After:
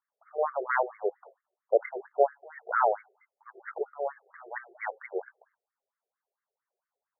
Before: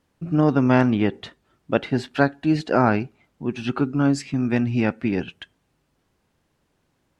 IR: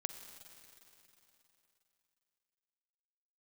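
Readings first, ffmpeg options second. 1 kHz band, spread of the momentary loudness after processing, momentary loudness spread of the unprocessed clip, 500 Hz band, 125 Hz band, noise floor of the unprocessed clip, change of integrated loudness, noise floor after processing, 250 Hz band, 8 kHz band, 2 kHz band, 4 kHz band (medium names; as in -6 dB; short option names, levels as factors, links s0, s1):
-3.5 dB, 15 LU, 10 LU, -4.5 dB, under -40 dB, -70 dBFS, -9.0 dB, under -85 dBFS, under -30 dB, no reading, -7.5 dB, under -40 dB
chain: -af "agate=range=0.224:threshold=0.00282:ratio=16:detection=peak,afftfilt=real='re*between(b*sr/1024,520*pow(1600/520,0.5+0.5*sin(2*PI*4.4*pts/sr))/1.41,520*pow(1600/520,0.5+0.5*sin(2*PI*4.4*pts/sr))*1.41)':imag='im*between(b*sr/1024,520*pow(1600/520,0.5+0.5*sin(2*PI*4.4*pts/sr))/1.41,520*pow(1600/520,0.5+0.5*sin(2*PI*4.4*pts/sr))*1.41)':win_size=1024:overlap=0.75"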